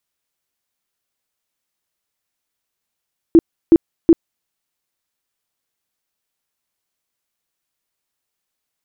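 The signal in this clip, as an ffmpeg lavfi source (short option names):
-f lavfi -i "aevalsrc='0.668*sin(2*PI*331*mod(t,0.37))*lt(mod(t,0.37),13/331)':d=1.11:s=44100"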